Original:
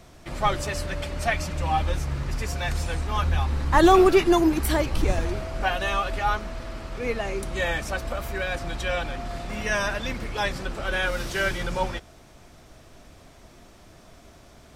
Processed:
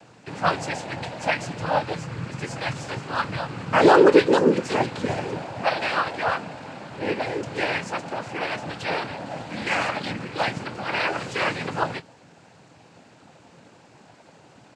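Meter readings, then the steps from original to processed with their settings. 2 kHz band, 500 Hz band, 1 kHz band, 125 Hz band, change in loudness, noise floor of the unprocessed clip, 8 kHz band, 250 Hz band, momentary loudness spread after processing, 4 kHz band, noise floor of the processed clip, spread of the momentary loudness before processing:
+1.5 dB, +2.5 dB, +1.0 dB, −4.0 dB, +1.0 dB, −51 dBFS, −4.5 dB, 0.0 dB, 14 LU, +0.5 dB, −53 dBFS, 12 LU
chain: parametric band 5,100 Hz −11.5 dB 0.43 octaves
cochlear-implant simulation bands 8
double-tracking delay 24 ms −13.5 dB
level +2 dB

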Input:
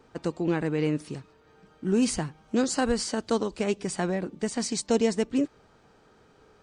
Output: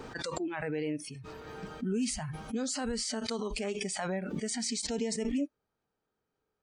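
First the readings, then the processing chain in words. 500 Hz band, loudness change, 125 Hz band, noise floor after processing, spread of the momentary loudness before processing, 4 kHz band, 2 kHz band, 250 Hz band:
−8.0 dB, −6.5 dB, −7.5 dB, −85 dBFS, 8 LU, −1.5 dB, −4.0 dB, −7.0 dB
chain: brickwall limiter −20.5 dBFS, peak gain reduction 9.5 dB
noise reduction from a noise print of the clip's start 23 dB
background raised ahead of every attack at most 21 dB per second
level −3.5 dB

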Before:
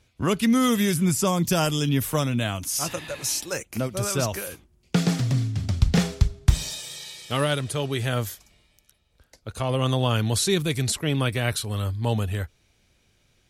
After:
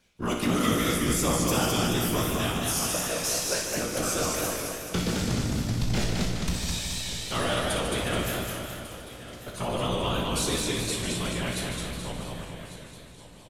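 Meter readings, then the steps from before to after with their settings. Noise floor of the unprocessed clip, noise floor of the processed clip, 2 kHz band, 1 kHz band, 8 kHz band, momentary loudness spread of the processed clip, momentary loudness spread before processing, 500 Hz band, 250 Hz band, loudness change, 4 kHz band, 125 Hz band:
−65 dBFS, −46 dBFS, −0.5 dB, −0.5 dB, +0.5 dB, 13 LU, 10 LU, −2.0 dB, −4.0 dB, −3.0 dB, 0.0 dB, −7.0 dB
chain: fade-out on the ending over 4.30 s
low-shelf EQ 310 Hz −5.5 dB
in parallel at −0.5 dB: downward compressor, threshold −30 dBFS, peak gain reduction 15 dB
on the sum: random phases in short frames
tuned comb filter 59 Hz, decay 0.32 s, harmonics all, mix 80%
repeating echo 1,148 ms, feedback 37%, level −15.5 dB
gain into a clipping stage and back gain 21 dB
loudspeakers that aren't time-aligned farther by 21 metres −8 dB, 51 metres −8 dB
feedback echo with a swinging delay time 214 ms, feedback 54%, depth 115 cents, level −3 dB

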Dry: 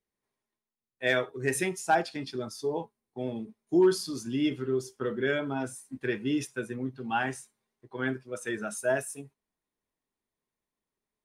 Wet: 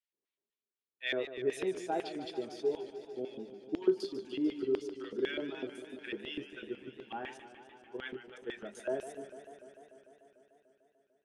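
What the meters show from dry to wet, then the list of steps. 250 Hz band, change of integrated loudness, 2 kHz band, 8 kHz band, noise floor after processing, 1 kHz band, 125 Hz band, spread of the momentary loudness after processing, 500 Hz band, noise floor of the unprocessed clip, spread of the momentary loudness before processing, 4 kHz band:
−7.5 dB, −7.0 dB, −10.5 dB, below −15 dB, below −85 dBFS, −11.5 dB, −17.0 dB, 14 LU, −5.0 dB, below −85 dBFS, 11 LU, −4.5 dB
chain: auto-filter band-pass square 4 Hz 390–3,000 Hz
feedback echo with a swinging delay time 148 ms, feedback 79%, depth 131 cents, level −12.5 dB

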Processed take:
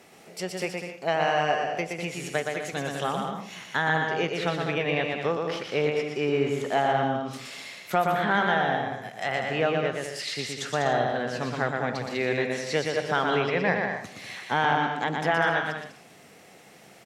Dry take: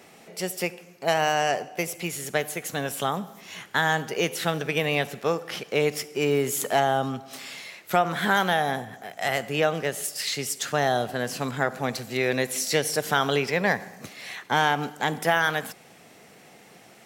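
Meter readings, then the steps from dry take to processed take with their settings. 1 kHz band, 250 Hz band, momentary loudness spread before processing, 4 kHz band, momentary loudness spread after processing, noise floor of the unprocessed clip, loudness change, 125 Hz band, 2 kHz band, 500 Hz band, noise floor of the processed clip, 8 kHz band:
0.0 dB, −0.5 dB, 10 LU, −3.5 dB, 9 LU, −52 dBFS, −1.0 dB, −0.5 dB, −0.5 dB, −0.5 dB, −52 dBFS, −10.0 dB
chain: treble cut that deepens with the level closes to 3,000 Hz, closed at −23 dBFS
bouncing-ball delay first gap 120 ms, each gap 0.65×, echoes 5
level −2.5 dB

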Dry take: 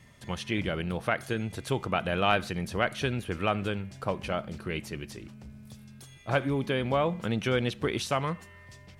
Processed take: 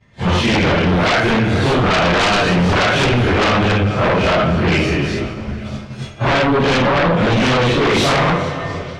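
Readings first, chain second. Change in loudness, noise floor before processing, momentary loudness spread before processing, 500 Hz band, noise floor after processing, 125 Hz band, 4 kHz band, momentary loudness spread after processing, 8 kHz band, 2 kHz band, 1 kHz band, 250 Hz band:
+15.5 dB, −52 dBFS, 18 LU, +14.5 dB, −31 dBFS, +16.0 dB, +17.0 dB, 9 LU, +14.5 dB, +16.5 dB, +15.5 dB, +16.0 dB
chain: random phases in long frames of 200 ms
feedback echo with a high-pass in the loop 447 ms, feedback 69%, high-pass 160 Hz, level −21.5 dB
downward expander −44 dBFS
high-frequency loss of the air 140 metres
in parallel at +2 dB: brickwall limiter −21.5 dBFS, peak gain reduction 8.5 dB
on the sum: dense smooth reverb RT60 2.1 s, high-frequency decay 0.95×, DRR 11.5 dB
downward compressor 4 to 1, threshold −21 dBFS, peak gain reduction 5 dB
sine wavefolder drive 13 dB, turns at −11 dBFS

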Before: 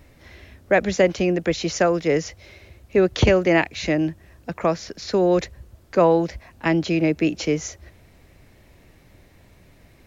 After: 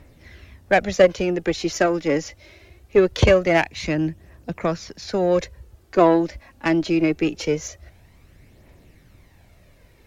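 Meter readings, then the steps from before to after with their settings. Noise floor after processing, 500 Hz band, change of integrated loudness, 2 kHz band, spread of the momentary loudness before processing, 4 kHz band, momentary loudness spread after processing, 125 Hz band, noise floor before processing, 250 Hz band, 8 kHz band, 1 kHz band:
−54 dBFS, +0.5 dB, +0.5 dB, +0.5 dB, 10 LU, 0.0 dB, 11 LU, −1.0 dB, −53 dBFS, 0.0 dB, can't be measured, +1.0 dB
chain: harmonic generator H 3 −18 dB, 8 −35 dB, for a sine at −5.5 dBFS
phase shifter 0.23 Hz, delay 3.7 ms, feedback 40%
level +2 dB

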